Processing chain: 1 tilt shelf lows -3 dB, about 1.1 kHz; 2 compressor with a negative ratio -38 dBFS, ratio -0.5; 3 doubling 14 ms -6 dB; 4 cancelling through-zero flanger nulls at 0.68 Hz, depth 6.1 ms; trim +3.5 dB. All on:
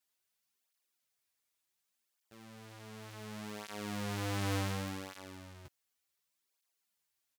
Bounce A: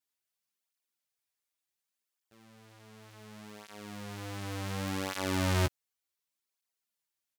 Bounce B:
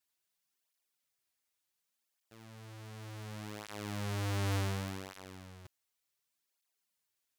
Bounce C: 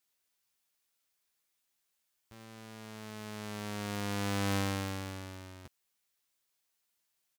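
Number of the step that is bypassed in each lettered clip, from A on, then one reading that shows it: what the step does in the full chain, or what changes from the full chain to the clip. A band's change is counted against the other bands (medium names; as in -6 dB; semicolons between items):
2, crest factor change +2.5 dB; 3, 125 Hz band +4.0 dB; 4, 125 Hz band -1.5 dB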